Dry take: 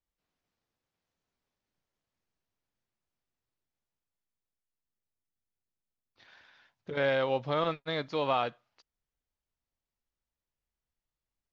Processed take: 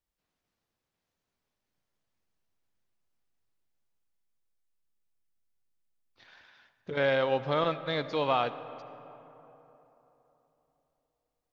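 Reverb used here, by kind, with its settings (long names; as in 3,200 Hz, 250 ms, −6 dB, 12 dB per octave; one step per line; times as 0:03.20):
comb and all-pass reverb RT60 3.7 s, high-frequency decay 0.45×, pre-delay 35 ms, DRR 13.5 dB
level +1.5 dB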